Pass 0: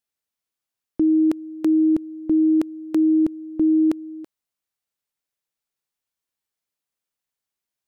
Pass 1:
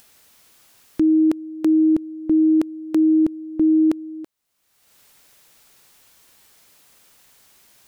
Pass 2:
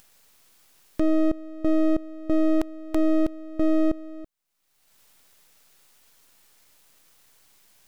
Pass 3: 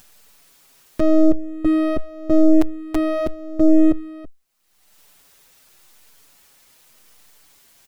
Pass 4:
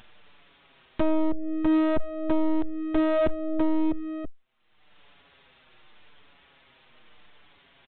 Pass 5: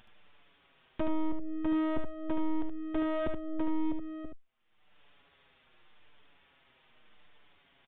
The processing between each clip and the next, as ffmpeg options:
ffmpeg -i in.wav -af "acompressor=mode=upward:threshold=-31dB:ratio=2.5,volume=1.5dB" out.wav
ffmpeg -i in.wav -af "aeval=exprs='max(val(0),0)':channel_layout=same,volume=-1dB" out.wav
ffmpeg -i in.wav -filter_complex "[0:a]asplit=2[link_01][link_02];[link_02]adelay=6.1,afreqshift=-0.85[link_03];[link_01][link_03]amix=inputs=2:normalize=1,volume=9dB" out.wav
ffmpeg -i in.wav -af "acompressor=threshold=-19dB:ratio=12,aresample=8000,asoftclip=type=hard:threshold=-20.5dB,aresample=44100,volume=2.5dB" out.wav
ffmpeg -i in.wav -af "aresample=8000,aresample=44100,aecho=1:1:74:0.501,volume=-8dB" out.wav

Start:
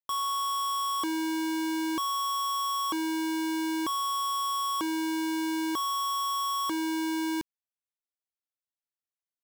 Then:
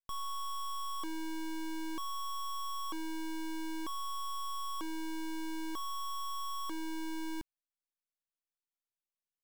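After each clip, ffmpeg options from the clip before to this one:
ffmpeg -i in.wav -af "aeval=exprs='max(val(0),0)':channel_layout=same,volume=-4.5dB" out.wav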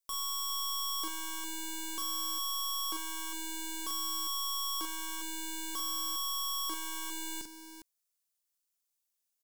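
ffmpeg -i in.wav -filter_complex "[0:a]bass=frequency=250:gain=-9,treble=frequency=4000:gain=12,asplit=2[link_01][link_02];[link_02]aecho=0:1:42|52|406:0.596|0.15|0.316[link_03];[link_01][link_03]amix=inputs=2:normalize=0" out.wav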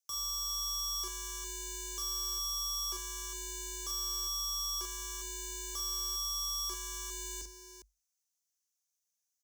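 ffmpeg -i in.wav -af "equalizer=frequency=6100:width_type=o:width=0.53:gain=13.5,afreqshift=48,volume=-6dB" out.wav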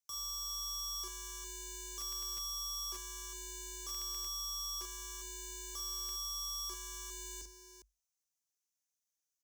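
ffmpeg -i in.wav -af "aeval=exprs='(mod(20*val(0)+1,2)-1)/20':channel_layout=same,volume=-4.5dB" out.wav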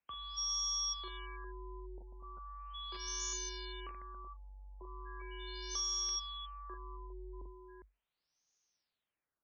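ffmpeg -i in.wav -af "crystalizer=i=1:c=0,acompressor=threshold=-39dB:ratio=6,afftfilt=real='re*lt(b*sr/1024,960*pow(6900/960,0.5+0.5*sin(2*PI*0.38*pts/sr)))':imag='im*lt(b*sr/1024,960*pow(6900/960,0.5+0.5*sin(2*PI*0.38*pts/sr)))':win_size=1024:overlap=0.75,volume=8dB" out.wav

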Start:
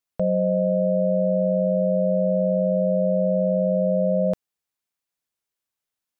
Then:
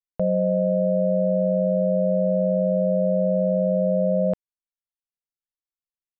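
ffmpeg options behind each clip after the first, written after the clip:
ffmpeg -i in.wav -af "anlmdn=100" out.wav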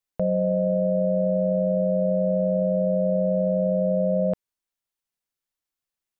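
ffmpeg -i in.wav -af "alimiter=limit=-22.5dB:level=0:latency=1:release=35,volume=7dB" out.wav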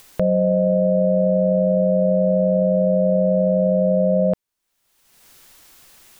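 ffmpeg -i in.wav -af "acompressor=mode=upward:threshold=-27dB:ratio=2.5,volume=5dB" out.wav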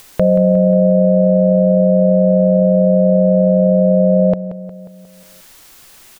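ffmpeg -i in.wav -af "aecho=1:1:179|358|537|716|895|1074:0.224|0.125|0.0702|0.0393|0.022|0.0123,volume=6dB" out.wav

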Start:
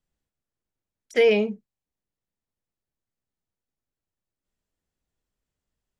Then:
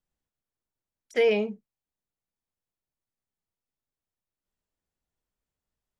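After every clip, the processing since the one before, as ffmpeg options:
ffmpeg -i in.wav -af "equalizer=frequency=910:width=1:gain=3.5,volume=-5dB" out.wav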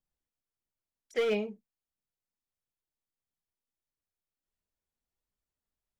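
ffmpeg -i in.wav -af "volume=19dB,asoftclip=hard,volume=-19dB,aphaser=in_gain=1:out_gain=1:delay=4.6:decay=0.29:speed=1.5:type=triangular,volume=-5.5dB" out.wav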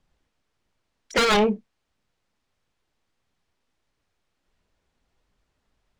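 ffmpeg -i in.wav -af "aeval=exprs='0.0841*sin(PI/2*3.16*val(0)/0.0841)':channel_layout=same,adynamicsmooth=sensitivity=3:basefreq=5000,volume=6.5dB" out.wav

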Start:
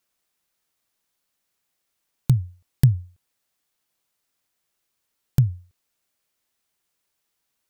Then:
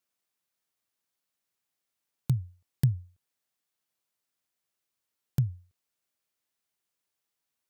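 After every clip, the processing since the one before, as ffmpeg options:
ffmpeg -i in.wav -af "highpass=65,volume=-8dB" out.wav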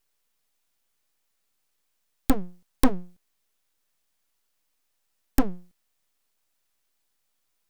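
ffmpeg -i in.wav -af "aeval=exprs='0.211*(cos(1*acos(clip(val(0)/0.211,-1,1)))-cos(1*PI/2))+0.0237*(cos(3*acos(clip(val(0)/0.211,-1,1)))-cos(3*PI/2))+0.0668*(cos(7*acos(clip(val(0)/0.211,-1,1)))-cos(7*PI/2))':channel_layout=same,aeval=exprs='abs(val(0))':channel_layout=same,volume=7dB" out.wav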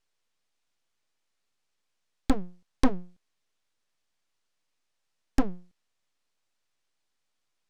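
ffmpeg -i in.wav -af "lowpass=6800,volume=-2.5dB" out.wav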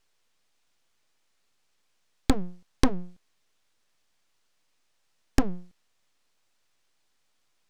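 ffmpeg -i in.wav -af "acompressor=threshold=-23dB:ratio=6,volume=7.5dB" out.wav

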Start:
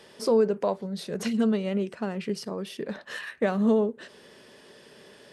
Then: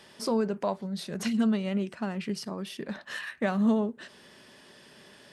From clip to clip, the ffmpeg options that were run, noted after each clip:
ffmpeg -i in.wav -af "equalizer=frequency=460:width=2.5:gain=-9" out.wav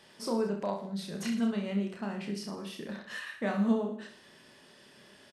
ffmpeg -i in.wav -af "aecho=1:1:30|66|109.2|161|223.2:0.631|0.398|0.251|0.158|0.1,volume=-5.5dB" out.wav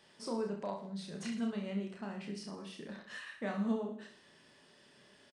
ffmpeg -i in.wav -filter_complex "[0:a]asplit=2[link_01][link_02];[link_02]adelay=37,volume=-12.5dB[link_03];[link_01][link_03]amix=inputs=2:normalize=0,aresample=22050,aresample=44100,volume=-6dB" out.wav

